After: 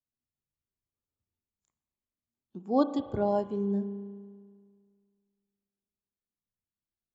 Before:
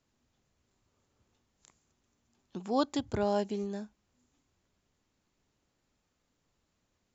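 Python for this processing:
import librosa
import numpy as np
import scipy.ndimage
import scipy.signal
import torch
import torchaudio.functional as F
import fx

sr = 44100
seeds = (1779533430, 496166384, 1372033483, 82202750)

y = fx.rev_spring(x, sr, rt60_s=2.8, pass_ms=(35,), chirp_ms=80, drr_db=5.5)
y = fx.spectral_expand(y, sr, expansion=1.5)
y = y * librosa.db_to_amplitude(2.5)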